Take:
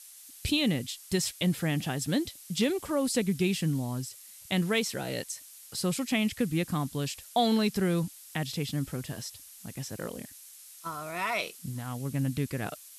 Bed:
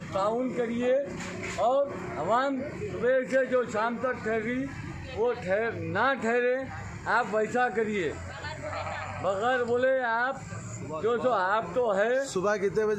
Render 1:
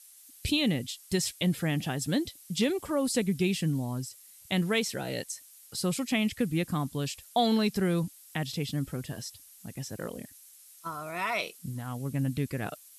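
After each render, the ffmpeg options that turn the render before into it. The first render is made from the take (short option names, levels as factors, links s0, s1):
-af "afftdn=nr=6:nf=-50"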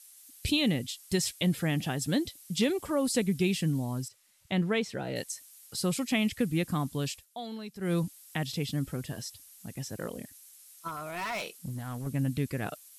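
-filter_complex "[0:a]asettb=1/sr,asplit=3[s0][s1][s2];[s0]atrim=end=4.084[s3];[s1]atrim=start=4.08:end=5.16,asetpts=PTS-STARTPTS,afade=t=in:d=0.004:c=qsin,afade=t=out:st=1.076:d=0.004:c=qsin,aemphasis=mode=reproduction:type=75kf[s4];[s2]atrim=start=5.156[s5];[s3][s4]acrossfade=d=0.004:c1=hsin:c2=qsin[s6];[s6][s5]acrossfade=d=0.004:c1=qsin:c2=hsin,asettb=1/sr,asplit=3[s7][s8][s9];[s7]atrim=end=10.884[s10];[s8]atrim=start=10.88:end=12.07,asetpts=PTS-STARTPTS,afade=t=in:d=0.004:c=qsin,afade=t=out:st=1.186:d=0.004:c=qsin,asoftclip=type=hard:threshold=0.0266[s11];[s9]atrim=start=12.066[s12];[s10][s11]acrossfade=d=0.004:c1=hsin:c2=qsin[s13];[s13][s12]acrossfade=d=0.004:c1=qsin:c2=hsin,asplit=3[s14][s15][s16];[s14]atrim=end=7.26,asetpts=PTS-STARTPTS,afade=t=out:st=7.12:d=0.14:silence=0.188365[s17];[s15]atrim=start=7.26:end=7.79,asetpts=PTS-STARTPTS,volume=0.188[s18];[s16]atrim=start=7.79,asetpts=PTS-STARTPTS,afade=t=in:d=0.14:silence=0.188365[s19];[s17][s18][s19]concat=n=3:v=0:a=1"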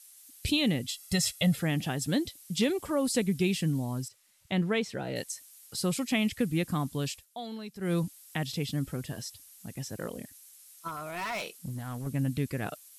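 -filter_complex "[0:a]asettb=1/sr,asplit=3[s0][s1][s2];[s0]atrim=end=0.874[s3];[s1]atrim=start=0.87:end=1.56,asetpts=PTS-STARTPTS,afade=t=in:d=0.004:c=qsin,afade=t=out:st=0.686:d=0.004:c=qsin,aecho=1:1:1.5:0.89,atrim=end_sample=30429[s4];[s2]atrim=start=1.556[s5];[s3][s4]acrossfade=d=0.004:c1=hsin:c2=qsin[s6];[s6][s5]acrossfade=d=0.004:c1=qsin:c2=hsin"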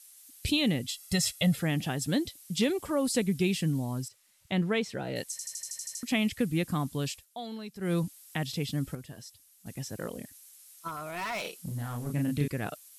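-filter_complex "[0:a]asettb=1/sr,asplit=3[s0][s1][s2];[s0]atrim=end=11.414[s3];[s1]atrim=start=11.41:end=12.48,asetpts=PTS-STARTPTS,afade=t=in:d=0.004:c=qsin,afade=t=out:st=1.066:d=0.004:c=qsin,asplit=2[s4][s5];[s5]adelay=34,volume=0.668[s6];[s4][s6]amix=inputs=2:normalize=0,atrim=end_sample=47187[s7];[s2]atrim=start=12.476[s8];[s3][s7]acrossfade=d=0.004:c1=hsin:c2=qsin[s9];[s9][s8]acrossfade=d=0.004:c1=qsin:c2=hsin,asplit=12[s10][s11][s12][s13][s14][s15][s16][s17][s18][s19][s20][s21];[s10]atrim=end=5.392[s22];[s11]atrim=start=5.308:end=5.392[s23];[s12]atrim=start=5.308:end=5.392[s24];[s13]atrim=start=5.308:end=5.392[s25];[s14]atrim=start=5.308:end=5.392[s26];[s15]atrim=start=5.308:end=5.392[s27];[s16]atrim=start=5.308:end=5.392[s28];[s17]atrim=start=5.308:end=5.392[s29];[s18]atrim=start=5.308:end=5.392[s30];[s19]atrim=start=6.028:end=8.952[s31];[s20]atrim=start=8.948:end=9.662,asetpts=PTS-STARTPTS,volume=0.422[s32];[s21]atrim=start=9.658[s33];[s22][s23]acrossfade=d=0.004:c1=hsin:c2=hsin[s34];[s34][s24]acrossfade=d=0.004:c1=hsin:c2=hsin[s35];[s35][s25]acrossfade=d=0.004:c1=hsin:c2=hsin[s36];[s36][s26]acrossfade=d=0.004:c1=hsin:c2=hsin[s37];[s37][s27]acrossfade=d=0.004:c1=hsin:c2=hsin[s38];[s38][s28]acrossfade=d=0.004:c1=hsin:c2=hsin[s39];[s39][s29]acrossfade=d=0.004:c1=hsin:c2=hsin[s40];[s40][s30]acrossfade=d=0.004:c1=hsin:c2=hsin[s41];[s41][s31]acrossfade=d=0.004:c1=hsin:c2=hsin[s42];[s42][s32]acrossfade=d=0.004:c1=hsin:c2=hsin[s43];[s43][s33]acrossfade=d=0.004:c1=hsin:c2=hsin"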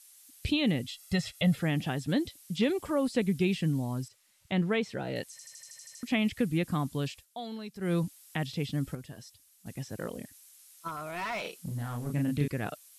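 -filter_complex "[0:a]acrossover=split=3700[s0][s1];[s1]acompressor=threshold=0.00501:ratio=4:attack=1:release=60[s2];[s0][s2]amix=inputs=2:normalize=0,highshelf=f=9900:g=-4"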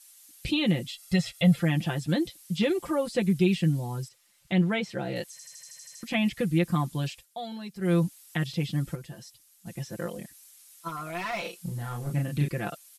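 -af "aecho=1:1:5.8:0.88"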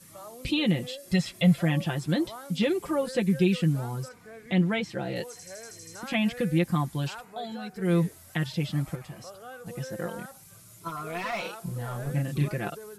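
-filter_complex "[1:a]volume=0.133[s0];[0:a][s0]amix=inputs=2:normalize=0"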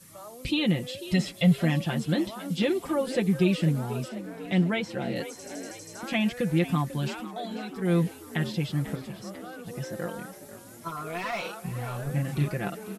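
-filter_complex "[0:a]asplit=7[s0][s1][s2][s3][s4][s5][s6];[s1]adelay=493,afreqshift=51,volume=0.2[s7];[s2]adelay=986,afreqshift=102,volume=0.116[s8];[s3]adelay=1479,afreqshift=153,volume=0.0668[s9];[s4]adelay=1972,afreqshift=204,volume=0.0389[s10];[s5]adelay=2465,afreqshift=255,volume=0.0226[s11];[s6]adelay=2958,afreqshift=306,volume=0.013[s12];[s0][s7][s8][s9][s10][s11][s12]amix=inputs=7:normalize=0"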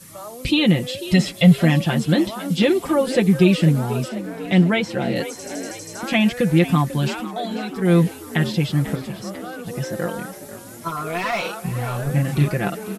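-af "volume=2.66"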